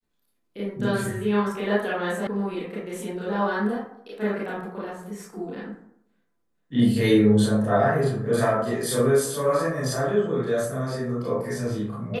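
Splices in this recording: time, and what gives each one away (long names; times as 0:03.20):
0:02.27: cut off before it has died away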